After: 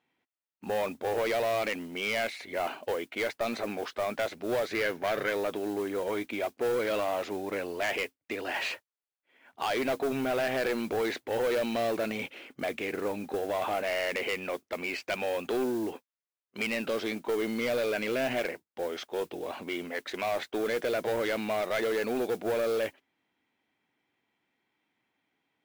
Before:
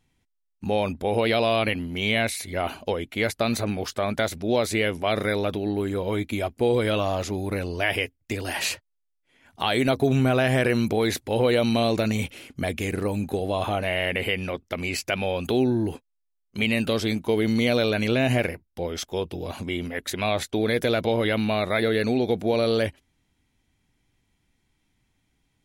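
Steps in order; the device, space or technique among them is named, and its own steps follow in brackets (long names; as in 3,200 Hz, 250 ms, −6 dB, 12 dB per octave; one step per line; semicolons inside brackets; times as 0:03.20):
carbon microphone (band-pass filter 370–2,700 Hz; soft clipping −24 dBFS, distortion −10 dB; noise that follows the level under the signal 21 dB)
0:04.68–0:05.30: thirty-one-band graphic EQ 125 Hz +12 dB, 1,600 Hz +7 dB, 8,000 Hz −5 dB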